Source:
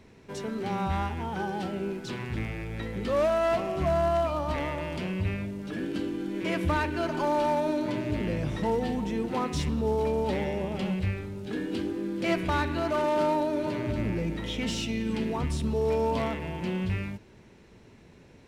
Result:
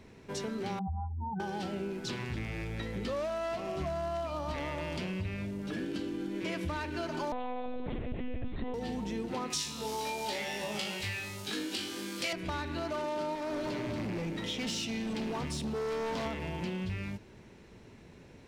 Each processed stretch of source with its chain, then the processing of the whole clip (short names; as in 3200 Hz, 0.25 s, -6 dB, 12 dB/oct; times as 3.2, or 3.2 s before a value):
0.79–1.4 spectral contrast raised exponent 3.6 + LPF 1600 Hz
7.32–8.74 bell 160 Hz +8 dB 1.1 oct + monotone LPC vocoder at 8 kHz 250 Hz
9.5–12.33 tilt +3.5 dB/oct + flutter echo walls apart 3.3 m, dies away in 0.36 s
13.35–16.26 HPF 120 Hz + hard clip -29 dBFS
whole clip: dynamic EQ 5100 Hz, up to +6 dB, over -53 dBFS, Q 0.91; compressor 5:1, threshold -33 dBFS